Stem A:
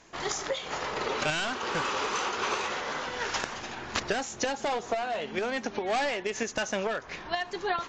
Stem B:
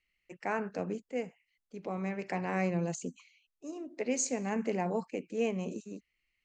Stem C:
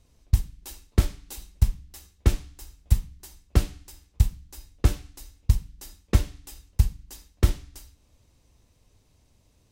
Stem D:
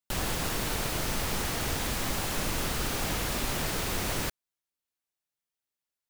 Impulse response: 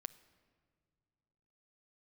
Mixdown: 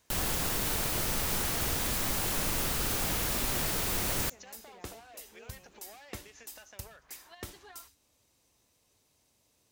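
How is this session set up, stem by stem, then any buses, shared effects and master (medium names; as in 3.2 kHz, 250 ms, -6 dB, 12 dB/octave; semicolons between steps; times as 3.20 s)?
-17.0 dB, 0.00 s, no send, frequency weighting A; compression 4:1, threshold -34 dBFS, peak gain reduction 8.5 dB
-16.0 dB, 0.00 s, no send, high-pass 810 Hz 6 dB/octave; peak limiter -29.5 dBFS, peak gain reduction 8.5 dB
-3.5 dB, 0.00 s, no send, high-pass 410 Hz 6 dB/octave; compression 2:1, threshold -44 dBFS, peak gain reduction 11.5 dB
-2.5 dB, 0.00 s, no send, none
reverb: none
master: treble shelf 8.4 kHz +8.5 dB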